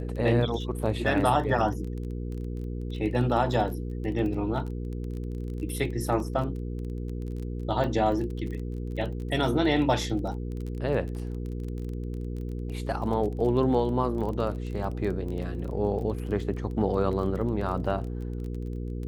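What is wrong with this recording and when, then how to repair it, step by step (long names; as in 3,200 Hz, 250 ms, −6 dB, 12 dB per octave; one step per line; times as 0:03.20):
surface crackle 22 per second −34 dBFS
mains hum 60 Hz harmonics 8 −33 dBFS
0:07.84: drop-out 3.1 ms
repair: click removal
hum removal 60 Hz, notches 8
repair the gap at 0:07.84, 3.1 ms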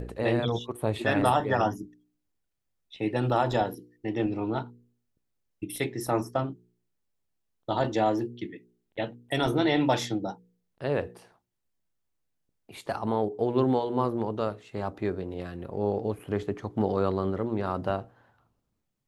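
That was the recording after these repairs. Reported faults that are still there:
none of them is left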